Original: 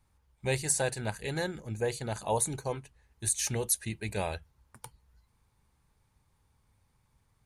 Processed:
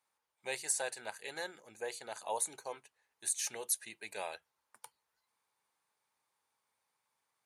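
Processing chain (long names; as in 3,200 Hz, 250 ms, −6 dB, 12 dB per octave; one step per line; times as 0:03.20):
high-pass filter 580 Hz 12 dB per octave
level −5 dB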